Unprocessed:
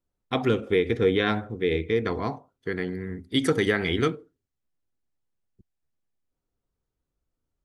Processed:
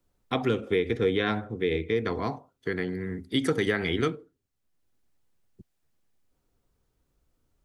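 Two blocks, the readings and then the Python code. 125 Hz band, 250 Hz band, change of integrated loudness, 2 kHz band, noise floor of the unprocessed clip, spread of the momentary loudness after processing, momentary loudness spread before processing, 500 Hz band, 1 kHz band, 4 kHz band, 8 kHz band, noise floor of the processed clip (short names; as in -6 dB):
-2.5 dB, -2.0 dB, -2.5 dB, -2.5 dB, -84 dBFS, 8 LU, 11 LU, -2.5 dB, -2.0 dB, -2.5 dB, -3.5 dB, -78 dBFS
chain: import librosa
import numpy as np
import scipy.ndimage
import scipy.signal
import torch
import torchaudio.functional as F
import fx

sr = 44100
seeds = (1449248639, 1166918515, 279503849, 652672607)

y = fx.band_squash(x, sr, depth_pct=40)
y = y * librosa.db_to_amplitude(-2.5)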